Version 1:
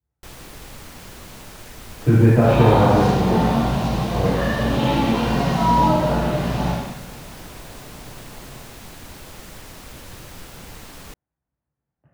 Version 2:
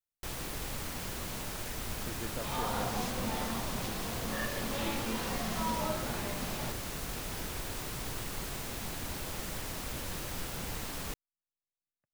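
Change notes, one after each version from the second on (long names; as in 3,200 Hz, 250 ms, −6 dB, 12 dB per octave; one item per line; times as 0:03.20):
first sound: add high-shelf EQ 8,500 Hz +3.5 dB
reverb: off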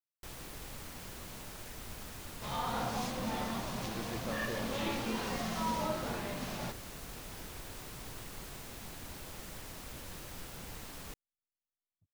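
speech: entry +1.90 s
first sound −7.5 dB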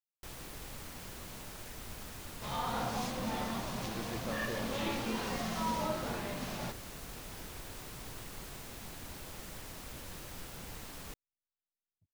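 nothing changed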